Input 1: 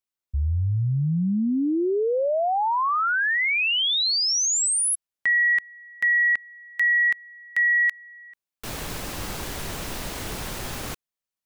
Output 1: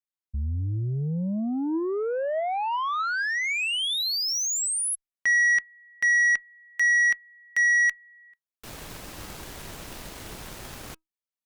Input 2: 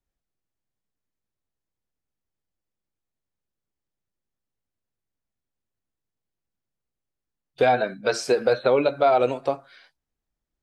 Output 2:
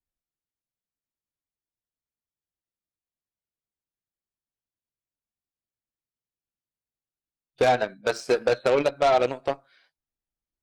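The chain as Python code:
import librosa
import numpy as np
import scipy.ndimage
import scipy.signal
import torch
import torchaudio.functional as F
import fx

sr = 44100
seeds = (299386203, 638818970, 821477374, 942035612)

y = fx.cheby_harmonics(x, sr, harmonics=(4, 5, 7), levels_db=(-43, -17, -15), full_scale_db=-8.5)
y = fx.comb_fb(y, sr, f0_hz=320.0, decay_s=0.18, harmonics='all', damping=0.5, mix_pct=30)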